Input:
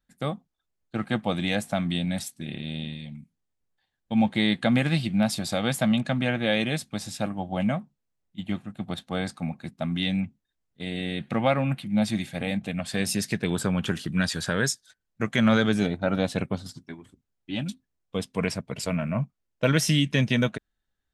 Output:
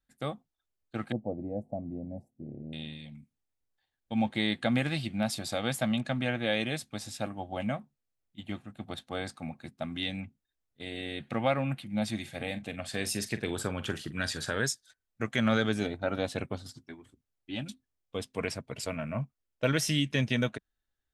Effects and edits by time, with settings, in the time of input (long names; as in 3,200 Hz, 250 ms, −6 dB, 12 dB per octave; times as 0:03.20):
0:01.12–0:02.73: inverse Chebyshev low-pass filter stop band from 1,300 Hz
0:12.21–0:14.61: double-tracking delay 44 ms −13.5 dB
whole clip: parametric band 180 Hz −14 dB 0.25 octaves; notch filter 1,000 Hz, Q 24; level −4.5 dB